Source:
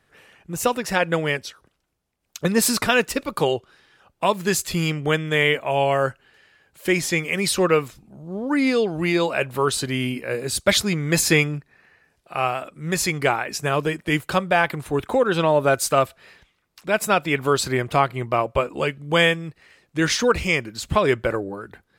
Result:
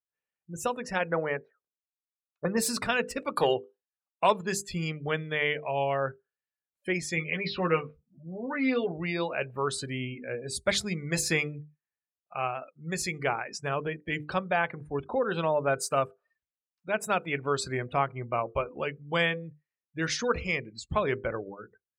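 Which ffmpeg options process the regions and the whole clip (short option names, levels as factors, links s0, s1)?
-filter_complex "[0:a]asettb=1/sr,asplit=3[s0][s1][s2];[s0]atrim=end=1.114[s3];[s1]atrim=start=1.11:end=2.57,asetpts=PTS-STARTPTS,afade=t=in:d=0.004:c=qsin,afade=t=out:st=1.456:d=0.004:c=qsin,lowpass=1400,lowshelf=f=210:g=-12,acontrast=59[s4];[s2]atrim=start=2.566[s5];[s3][s4]acrossfade=d=0.004:c1=hsin:c2=qsin[s6];[s6][s5]acrossfade=d=0.004:c1=qsin:c2=hsin,asettb=1/sr,asplit=3[s7][s8][s9];[s7]atrim=end=3.184[s10];[s8]atrim=start=3.18:end=4.41,asetpts=PTS-STARTPTS,afade=t=in:d=0.004:c=qsin,afade=t=out:st=1.226:d=0.004:c=qsin,agate=range=0.0224:threshold=0.00398:ratio=3:release=100:detection=peak,highpass=f=270:p=1,acontrast=82[s11];[s9]atrim=start=4.406[s12];[s10][s11]acrossfade=d=0.004:c1=hsin:c2=qsin[s13];[s13][s12]acrossfade=d=0.004:c1=qsin:c2=hsin,asettb=1/sr,asplit=3[s14][s15][s16];[s14]atrim=end=7.164[s17];[s15]atrim=start=7.16:end=8.92,asetpts=PTS-STARTPTS,afade=t=in:d=0.004:c=qsin,afade=t=out:st=1.756:d=0.004:c=qsin,lowpass=f=4200:w=0.5412,lowpass=f=4200:w=1.3066,asplit=2[s18][s19];[s19]adelay=12,volume=0.708[s20];[s18][s20]amix=inputs=2:normalize=0,atrim=end_sample=77616[s21];[s16]atrim=start=8.916[s22];[s17][s21]acrossfade=d=0.004:c1=hsin:c2=qsin[s23];[s23][s22]acrossfade=d=0.004:c1=qsin:c2=hsin,bandreject=f=50:t=h:w=6,bandreject=f=100:t=h:w=6,bandreject=f=150:t=h:w=6,bandreject=f=200:t=h:w=6,bandreject=f=250:t=h:w=6,bandreject=f=300:t=h:w=6,bandreject=f=350:t=h:w=6,bandreject=f=400:t=h:w=6,bandreject=f=450:t=h:w=6,bandreject=f=500:t=h:w=6,afftdn=nr=35:nf=-33,equalizer=f=315:t=o:w=0.33:g=-4,equalizer=f=3150:t=o:w=0.33:g=-3,equalizer=f=12500:t=o:w=0.33:g=-6,volume=0.398"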